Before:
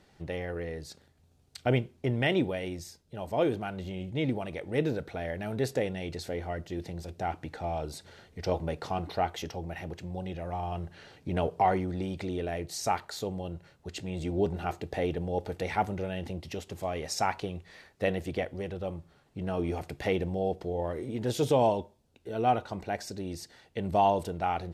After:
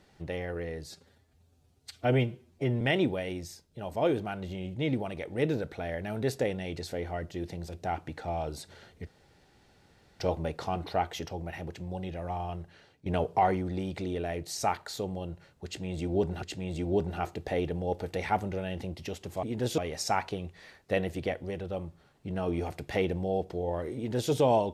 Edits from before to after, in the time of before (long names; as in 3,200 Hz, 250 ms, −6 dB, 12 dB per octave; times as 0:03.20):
0:00.89–0:02.17: time-stretch 1.5×
0:08.43: splice in room tone 1.13 s
0:10.57–0:11.29: fade out, to −14.5 dB
0:13.88–0:14.65: repeat, 2 plays
0:21.07–0:21.42: duplicate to 0:16.89